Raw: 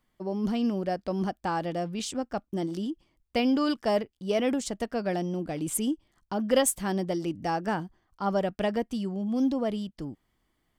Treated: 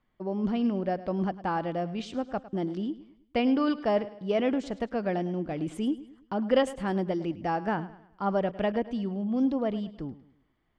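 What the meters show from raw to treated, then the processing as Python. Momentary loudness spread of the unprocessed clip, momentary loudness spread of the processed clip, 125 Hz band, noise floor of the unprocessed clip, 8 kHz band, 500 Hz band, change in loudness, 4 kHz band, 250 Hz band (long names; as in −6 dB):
8 LU, 8 LU, 0.0 dB, −76 dBFS, below −15 dB, 0.0 dB, −0.5 dB, −4.5 dB, 0.0 dB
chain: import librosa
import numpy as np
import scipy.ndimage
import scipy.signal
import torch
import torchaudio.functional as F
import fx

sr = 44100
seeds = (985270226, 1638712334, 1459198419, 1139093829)

p1 = scipy.signal.sosfilt(scipy.signal.butter(2, 2900.0, 'lowpass', fs=sr, output='sos'), x)
y = p1 + fx.echo_feedback(p1, sr, ms=105, feedback_pct=41, wet_db=-16.5, dry=0)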